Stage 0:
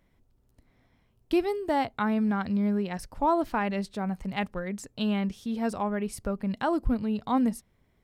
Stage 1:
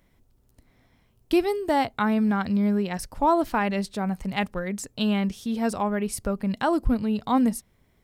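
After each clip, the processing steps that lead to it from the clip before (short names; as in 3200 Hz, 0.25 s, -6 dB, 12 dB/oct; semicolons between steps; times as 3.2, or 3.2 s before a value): high shelf 4800 Hz +6 dB; gain +3.5 dB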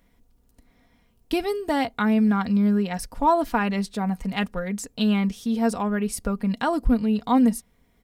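comb 4.2 ms, depth 50%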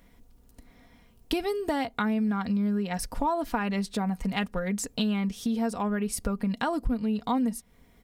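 compressor 4:1, threshold -31 dBFS, peak gain reduction 14 dB; gain +4.5 dB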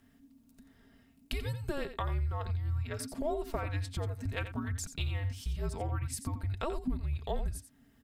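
echo 87 ms -11 dB; frequency shift -290 Hz; gain -6.5 dB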